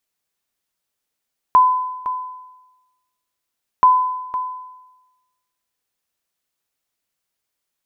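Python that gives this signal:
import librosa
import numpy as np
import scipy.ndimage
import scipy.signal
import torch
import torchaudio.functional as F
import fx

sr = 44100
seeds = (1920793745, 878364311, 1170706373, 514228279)

y = fx.sonar_ping(sr, hz=1010.0, decay_s=1.08, every_s=2.28, pings=2, echo_s=0.51, echo_db=-13.0, level_db=-5.5)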